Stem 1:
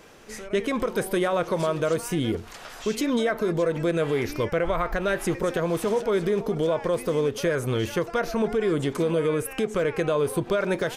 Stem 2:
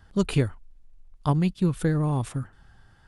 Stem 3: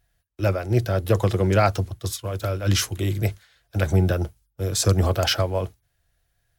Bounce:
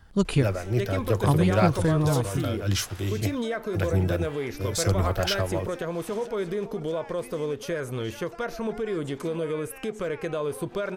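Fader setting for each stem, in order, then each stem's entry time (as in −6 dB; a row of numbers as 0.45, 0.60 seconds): −5.5, +0.5, −5.0 decibels; 0.25, 0.00, 0.00 seconds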